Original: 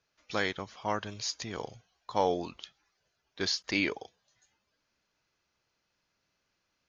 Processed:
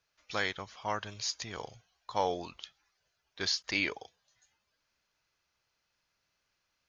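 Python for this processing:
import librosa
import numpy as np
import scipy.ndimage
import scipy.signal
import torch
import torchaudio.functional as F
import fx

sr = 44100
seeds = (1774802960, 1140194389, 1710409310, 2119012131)

y = fx.peak_eq(x, sr, hz=260.0, db=-7.0, octaves=2.2)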